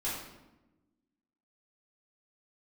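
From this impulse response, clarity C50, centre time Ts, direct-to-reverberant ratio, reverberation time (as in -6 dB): 1.5 dB, 59 ms, -10.0 dB, 1.0 s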